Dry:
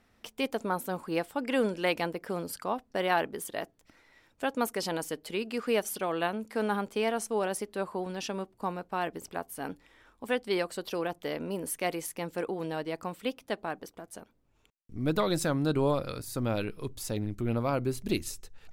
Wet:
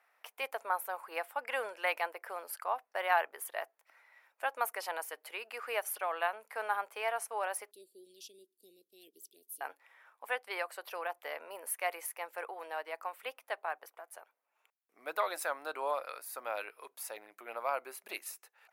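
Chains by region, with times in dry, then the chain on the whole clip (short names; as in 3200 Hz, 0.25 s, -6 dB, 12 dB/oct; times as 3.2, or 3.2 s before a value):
7.71–9.61 Chebyshev band-stop 380–3400 Hz, order 4 + bell 98 Hz +8 dB 1.9 oct
whole clip: HPF 660 Hz 24 dB/oct; band shelf 5100 Hz -10 dB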